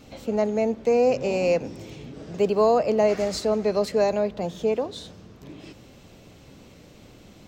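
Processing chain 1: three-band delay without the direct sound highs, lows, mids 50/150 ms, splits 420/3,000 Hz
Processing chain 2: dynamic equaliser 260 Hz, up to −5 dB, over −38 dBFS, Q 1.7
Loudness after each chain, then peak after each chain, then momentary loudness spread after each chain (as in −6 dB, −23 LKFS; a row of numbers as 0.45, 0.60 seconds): −25.5, −24.5 LKFS; −10.0, −10.0 dBFS; 19, 19 LU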